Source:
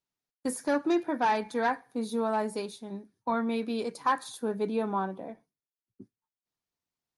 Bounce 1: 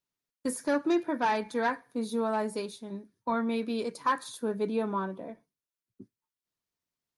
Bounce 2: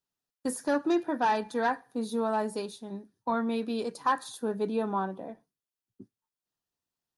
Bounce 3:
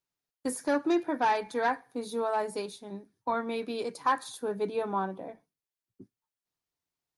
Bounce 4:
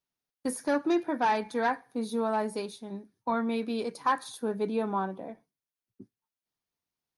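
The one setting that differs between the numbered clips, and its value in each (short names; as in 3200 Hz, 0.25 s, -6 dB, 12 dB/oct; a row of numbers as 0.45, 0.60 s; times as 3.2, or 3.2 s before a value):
notch, frequency: 780, 2200, 220, 7500 Hz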